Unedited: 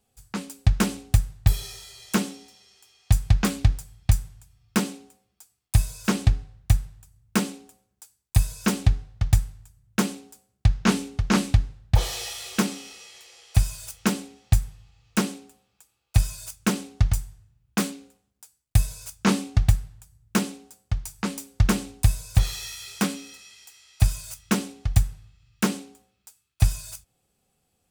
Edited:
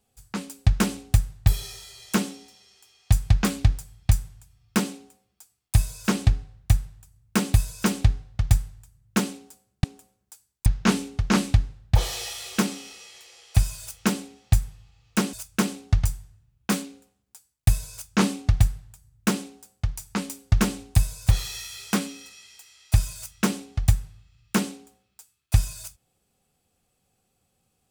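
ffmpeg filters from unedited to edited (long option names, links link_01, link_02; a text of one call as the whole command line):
ffmpeg -i in.wav -filter_complex "[0:a]asplit=5[link_01][link_02][link_03][link_04][link_05];[link_01]atrim=end=7.542[link_06];[link_02]atrim=start=8.358:end=10.662[link_07];[link_03]atrim=start=7.538:end=8.362[link_08];[link_04]atrim=start=10.658:end=15.332[link_09];[link_05]atrim=start=16.408[link_10];[link_06][link_07]acrossfade=duration=0.004:curve1=hsin:curve2=hsin[link_11];[link_11][link_08]acrossfade=duration=0.004:curve1=hsin:curve2=hsin[link_12];[link_12][link_09]acrossfade=duration=0.004:curve1=hsin:curve2=hsin[link_13];[link_13][link_10]acrossfade=duration=0.004:curve1=hsin:curve2=hsin" out.wav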